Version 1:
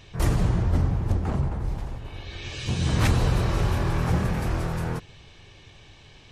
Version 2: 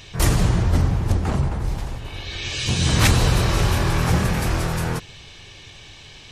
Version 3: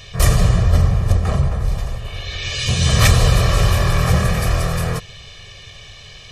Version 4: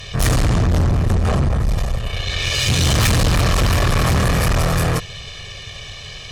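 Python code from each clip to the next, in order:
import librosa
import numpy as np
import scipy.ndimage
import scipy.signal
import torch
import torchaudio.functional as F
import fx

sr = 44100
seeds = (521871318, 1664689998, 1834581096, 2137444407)

y1 = fx.high_shelf(x, sr, hz=2100.0, db=9.0)
y1 = y1 * librosa.db_to_amplitude(4.0)
y2 = y1 + 0.72 * np.pad(y1, (int(1.7 * sr / 1000.0), 0))[:len(y1)]
y2 = y2 * librosa.db_to_amplitude(1.0)
y3 = fx.tube_stage(y2, sr, drive_db=21.0, bias=0.55)
y3 = y3 * librosa.db_to_amplitude(8.0)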